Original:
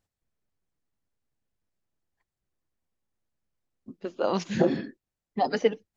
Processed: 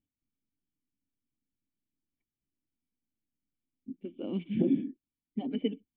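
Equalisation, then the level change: cascade formant filter i; +5.0 dB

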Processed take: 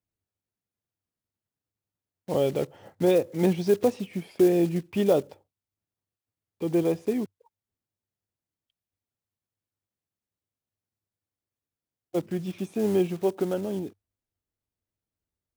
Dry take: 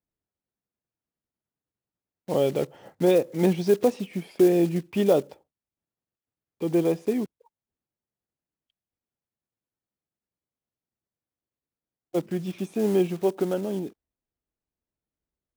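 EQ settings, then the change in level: peaking EQ 98 Hz +13 dB 0.31 oct; -1.5 dB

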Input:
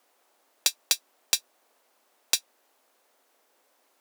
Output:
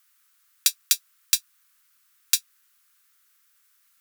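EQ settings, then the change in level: elliptic band-stop 170–1300 Hz, stop band 40 dB; bass shelf 160 Hz +6 dB; treble shelf 8.5 kHz +9.5 dB; 0.0 dB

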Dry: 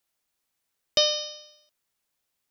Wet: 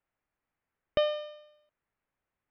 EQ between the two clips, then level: low-pass 2.2 kHz 24 dB/octave; bass shelf 120 Hz +7 dB; 0.0 dB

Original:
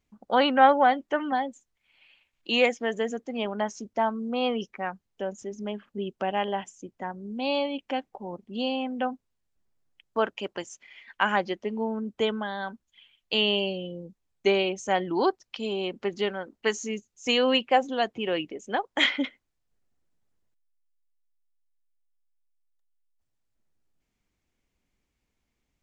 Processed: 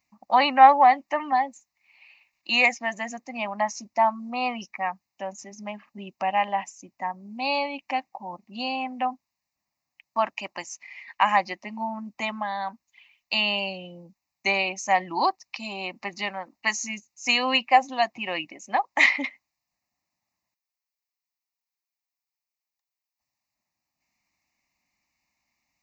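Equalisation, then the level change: high-pass 620 Hz 6 dB/octave; static phaser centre 2.2 kHz, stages 8; +8.5 dB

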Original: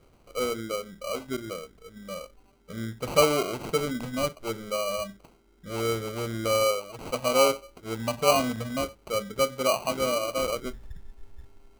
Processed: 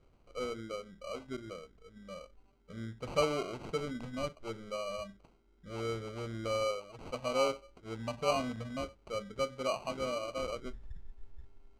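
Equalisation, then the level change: distance through air 70 m; bass shelf 75 Hz +6.5 dB; -9.0 dB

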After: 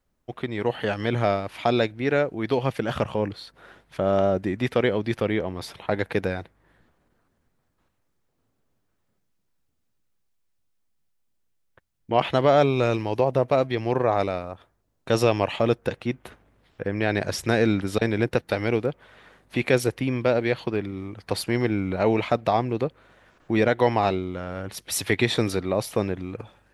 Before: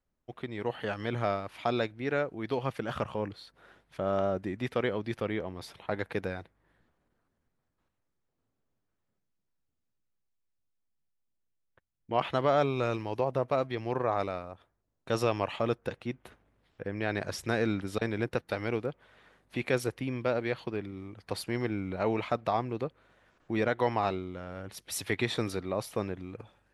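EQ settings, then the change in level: dynamic bell 1.2 kHz, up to -5 dB, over -44 dBFS, Q 2; +8.5 dB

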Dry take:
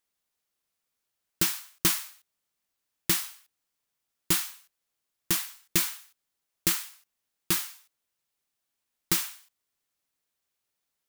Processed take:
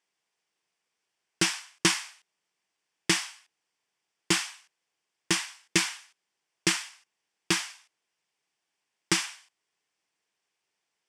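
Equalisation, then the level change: cabinet simulation 200–7400 Hz, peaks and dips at 250 Hz -9 dB, 570 Hz -6 dB, 1.3 kHz -6 dB, 4 kHz -9 dB, 6.7 kHz -6 dB; +7.5 dB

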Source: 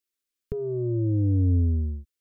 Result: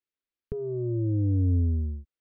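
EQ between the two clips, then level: distance through air 240 m; -2.0 dB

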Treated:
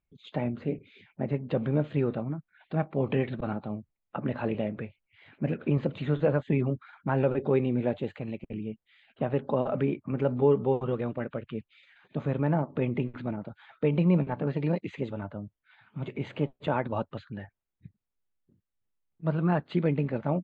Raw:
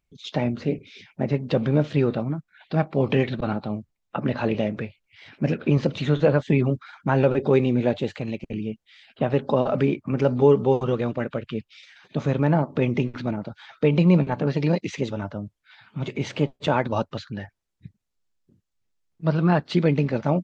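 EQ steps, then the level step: boxcar filter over 8 samples; -6.0 dB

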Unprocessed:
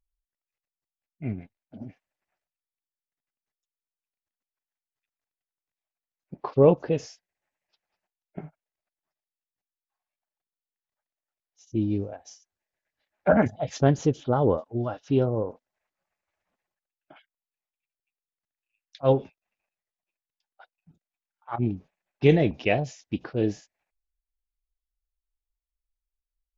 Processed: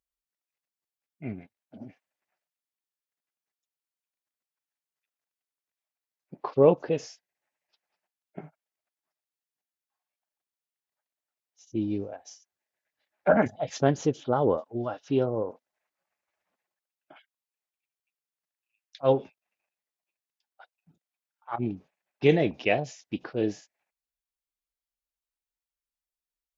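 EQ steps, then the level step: high-pass 250 Hz 6 dB/octave; 0.0 dB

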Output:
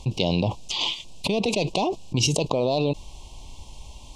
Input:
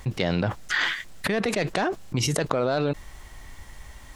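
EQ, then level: elliptic band-stop 990–2600 Hz, stop band 70 dB; distance through air 85 m; treble shelf 2.6 kHz +9.5 dB; +2.0 dB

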